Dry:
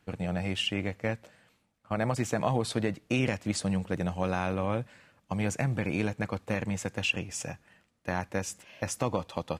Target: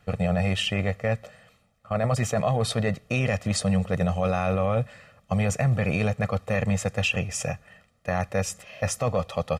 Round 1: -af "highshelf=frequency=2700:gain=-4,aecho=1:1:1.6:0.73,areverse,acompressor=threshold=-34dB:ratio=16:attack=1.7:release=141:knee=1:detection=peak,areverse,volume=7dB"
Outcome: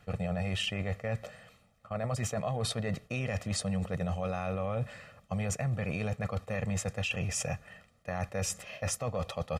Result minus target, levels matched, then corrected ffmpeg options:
downward compressor: peak gain reduction +9.5 dB
-af "highshelf=frequency=2700:gain=-4,aecho=1:1:1.6:0.73,areverse,acompressor=threshold=-24dB:ratio=16:attack=1.7:release=141:knee=1:detection=peak,areverse,volume=7dB"

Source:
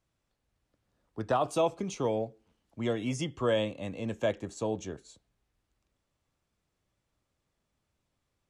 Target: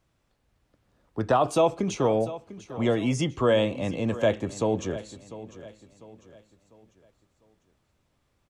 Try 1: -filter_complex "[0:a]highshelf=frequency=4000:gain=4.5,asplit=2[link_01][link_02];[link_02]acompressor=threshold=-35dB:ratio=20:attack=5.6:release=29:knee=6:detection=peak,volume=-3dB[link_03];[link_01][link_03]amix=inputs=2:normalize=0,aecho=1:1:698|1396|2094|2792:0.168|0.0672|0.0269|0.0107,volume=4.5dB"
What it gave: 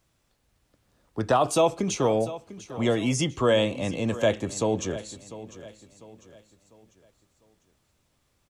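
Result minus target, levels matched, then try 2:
8,000 Hz band +6.5 dB
-filter_complex "[0:a]highshelf=frequency=4000:gain=-5,asplit=2[link_01][link_02];[link_02]acompressor=threshold=-35dB:ratio=20:attack=5.6:release=29:knee=6:detection=peak,volume=-3dB[link_03];[link_01][link_03]amix=inputs=2:normalize=0,aecho=1:1:698|1396|2094|2792:0.168|0.0672|0.0269|0.0107,volume=4.5dB"

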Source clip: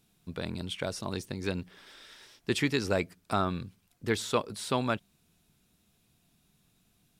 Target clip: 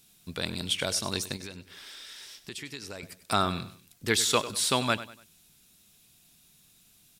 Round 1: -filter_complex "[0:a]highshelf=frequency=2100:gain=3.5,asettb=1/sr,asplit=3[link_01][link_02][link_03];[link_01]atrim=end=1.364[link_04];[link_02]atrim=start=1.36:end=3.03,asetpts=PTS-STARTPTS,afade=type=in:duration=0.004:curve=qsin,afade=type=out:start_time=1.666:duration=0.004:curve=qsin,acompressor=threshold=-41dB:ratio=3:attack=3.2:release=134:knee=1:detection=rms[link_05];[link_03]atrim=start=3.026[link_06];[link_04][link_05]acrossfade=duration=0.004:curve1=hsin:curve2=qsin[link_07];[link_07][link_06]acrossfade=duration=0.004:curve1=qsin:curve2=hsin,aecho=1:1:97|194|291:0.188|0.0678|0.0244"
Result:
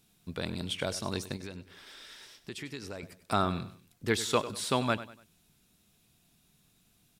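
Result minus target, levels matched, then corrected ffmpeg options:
4,000 Hz band −3.0 dB
-filter_complex "[0:a]highshelf=frequency=2100:gain=13.5,asettb=1/sr,asplit=3[link_01][link_02][link_03];[link_01]atrim=end=1.364[link_04];[link_02]atrim=start=1.36:end=3.03,asetpts=PTS-STARTPTS,afade=type=in:duration=0.004:curve=qsin,afade=type=out:start_time=1.666:duration=0.004:curve=qsin,acompressor=threshold=-41dB:ratio=3:attack=3.2:release=134:knee=1:detection=rms[link_05];[link_03]atrim=start=3.026[link_06];[link_04][link_05]acrossfade=duration=0.004:curve1=hsin:curve2=qsin[link_07];[link_07][link_06]acrossfade=duration=0.004:curve1=qsin:curve2=hsin,aecho=1:1:97|194|291:0.188|0.0678|0.0244"

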